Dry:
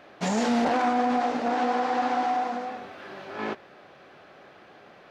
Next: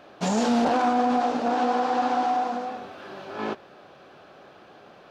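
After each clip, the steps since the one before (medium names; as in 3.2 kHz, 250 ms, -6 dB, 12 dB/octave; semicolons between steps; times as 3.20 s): peaking EQ 2 kHz -7.5 dB 0.46 oct; trim +2 dB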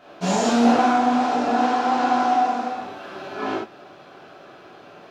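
gated-style reverb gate 130 ms flat, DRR -8 dB; trim -3.5 dB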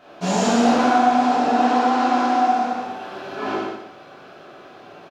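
feedback delay 117 ms, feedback 34%, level -3.5 dB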